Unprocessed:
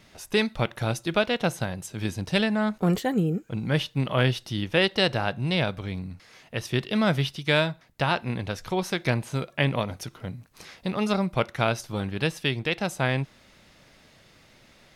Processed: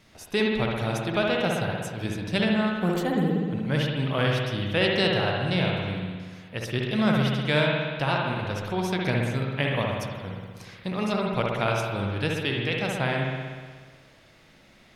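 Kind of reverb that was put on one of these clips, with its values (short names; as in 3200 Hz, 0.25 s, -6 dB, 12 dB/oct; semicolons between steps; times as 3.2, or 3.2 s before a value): spring tank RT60 1.6 s, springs 60 ms, chirp 25 ms, DRR -1 dB; gain -3 dB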